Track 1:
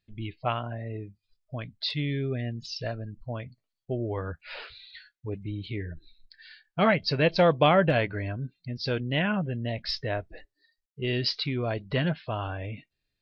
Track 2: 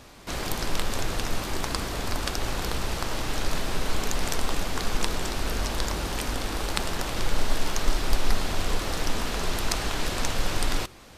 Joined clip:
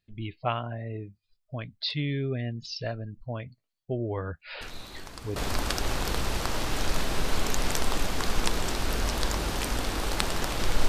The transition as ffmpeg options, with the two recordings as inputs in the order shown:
-filter_complex "[1:a]asplit=2[a][b];[0:a]apad=whole_dur=10.88,atrim=end=10.88,atrim=end=5.362[c];[b]atrim=start=1.928:end=7.45[d];[a]atrim=start=1.18:end=1.93,asetpts=PTS-STARTPTS,volume=-14dB,afade=t=in:d=0.004:c=hsin,afade=t=out:st=0.746:d=0.004:c=hsin,adelay=203301S[e];[c][d]acrossfade=d=0.004:c1=hsin:c2=hsin[f];[f][e]amix=inputs=2:normalize=0"

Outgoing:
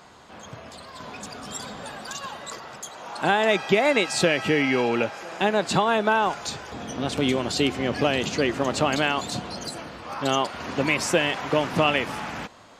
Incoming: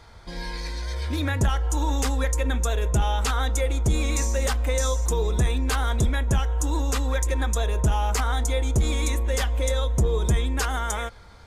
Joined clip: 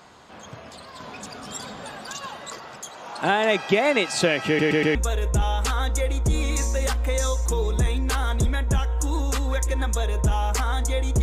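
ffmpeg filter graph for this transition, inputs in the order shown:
-filter_complex "[0:a]apad=whole_dur=11.22,atrim=end=11.22,asplit=4[a][b][c][d];[a]atrim=end=4.592[e];[b]atrim=start=4.468:end=4.592[f];[c]atrim=start=4.468:end=4.592[g];[d]atrim=start=4.468:end=4.592[h];[1:a]atrim=start=2.548:end=8.82[i];[e][f]acrossfade=d=0.004:c1=hsin:c2=hsin[j];[j][g]acrossfade=d=0.004:c1=hsin:c2=hsin[k];[k][h]acrossfade=d=0.004:c1=hsin:c2=hsin[l];[l][i]acrossfade=d=0.004:c1=hsin:c2=hsin"

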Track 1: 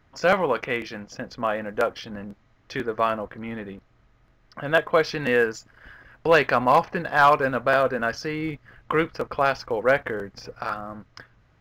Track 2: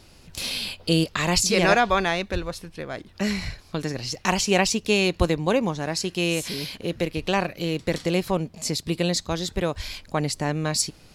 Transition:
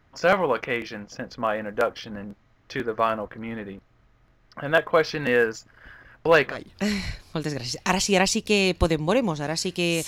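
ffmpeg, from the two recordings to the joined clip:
-filter_complex "[0:a]apad=whole_dur=10.07,atrim=end=10.07,atrim=end=6.57,asetpts=PTS-STARTPTS[a];[1:a]atrim=start=2.8:end=6.46,asetpts=PTS-STARTPTS[b];[a][b]acrossfade=d=0.16:c1=tri:c2=tri"

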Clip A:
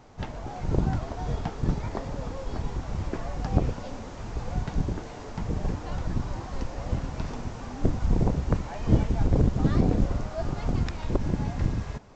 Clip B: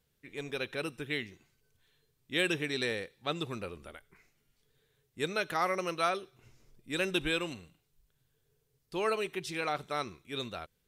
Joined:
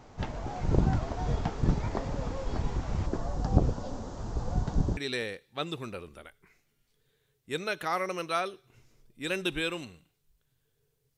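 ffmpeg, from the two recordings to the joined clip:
-filter_complex "[0:a]asettb=1/sr,asplit=3[a][b][c];[a]atrim=end=3.064[d];[b]atrim=start=3.06:end=4.97,asetpts=PTS-STARTPTS,afade=t=in:d=0.004:c=qsin,afade=t=out:st=1.906:d=0.004:c=qsin,equalizer=f=2.3k:t=o:w=0.93:g=-12[e];[c]atrim=start=4.966[f];[d][e]acrossfade=d=0.004:c1=hsin:c2=qsin[g];[g][f]acrossfade=d=0.004:c1=qsin:c2=hsin,apad=whole_dur=11.17,atrim=end=11.17,atrim=end=4.972[h];[1:a]atrim=start=2.658:end=8.86[i];[h][i]acrossfade=d=0.004:c1=hsin:c2=hsin"

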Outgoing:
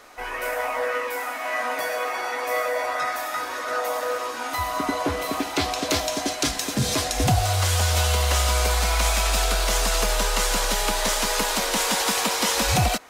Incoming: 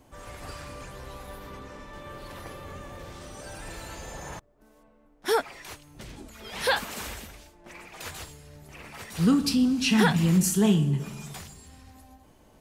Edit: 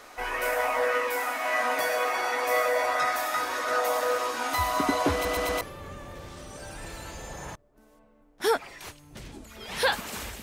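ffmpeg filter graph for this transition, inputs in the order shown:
-filter_complex "[0:a]apad=whole_dur=10.42,atrim=end=10.42,asplit=4[a][b][c][d];[a]atrim=end=5.252[e];[b]atrim=start=5.128:end=5.252[f];[c]atrim=start=5.128:end=5.252[g];[d]atrim=start=5.128:end=5.252[h];[1:a]atrim=start=2.448:end=7.26[i];[e][f]acrossfade=d=0.004:c1=hsin:c2=hsin[j];[j][g]acrossfade=d=0.004:c1=hsin:c2=hsin[k];[k][h]acrossfade=d=0.004:c1=hsin:c2=hsin[l];[l][i]acrossfade=d=0.004:c1=hsin:c2=hsin"

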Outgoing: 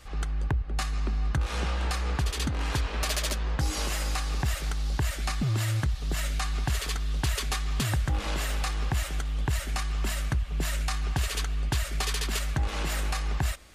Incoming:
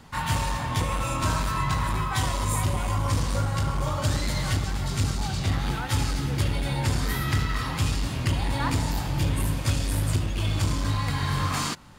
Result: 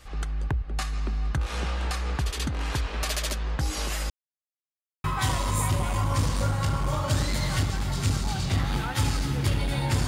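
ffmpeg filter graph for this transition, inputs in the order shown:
-filter_complex "[0:a]apad=whole_dur=10.07,atrim=end=10.07,asplit=2[a][b];[a]atrim=end=4.1,asetpts=PTS-STARTPTS,afade=t=out:st=4.096:d=0.004:c=hsin[c];[b]atrim=start=4.1:end=5.04,asetpts=PTS-STARTPTS,volume=0[d];[1:a]atrim=start=1.98:end=7.01,asetpts=PTS-STARTPTS,afade=t=in:d=0.004:c=hsin[e];[c][d][e]concat=n=3:v=0:a=1"

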